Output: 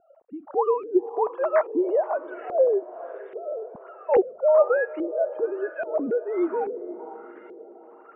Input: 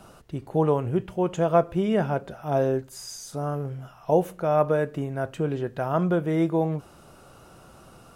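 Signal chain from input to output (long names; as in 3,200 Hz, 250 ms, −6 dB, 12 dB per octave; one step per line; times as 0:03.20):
three sine waves on the formant tracks
feedback delay with all-pass diffusion 510 ms, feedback 47%, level −14 dB
auto-filter low-pass saw up 1.2 Hz 410–2,200 Hz
level −2.5 dB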